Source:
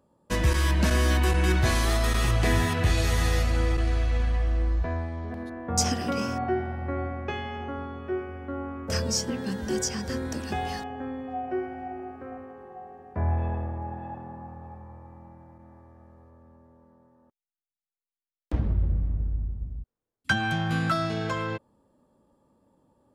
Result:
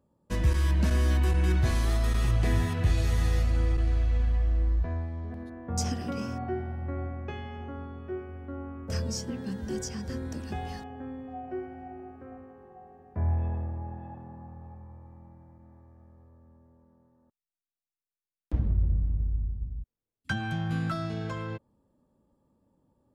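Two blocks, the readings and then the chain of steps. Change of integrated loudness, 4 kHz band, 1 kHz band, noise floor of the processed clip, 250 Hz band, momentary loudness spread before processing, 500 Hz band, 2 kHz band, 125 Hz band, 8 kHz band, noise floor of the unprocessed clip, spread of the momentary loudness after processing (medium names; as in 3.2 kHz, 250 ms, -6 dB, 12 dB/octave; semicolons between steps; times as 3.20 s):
-2.5 dB, -9.0 dB, -8.0 dB, under -85 dBFS, -4.0 dB, 16 LU, -6.5 dB, -9.0 dB, -1.0 dB, -9.0 dB, under -85 dBFS, 18 LU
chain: bass shelf 280 Hz +9 dB; trim -9 dB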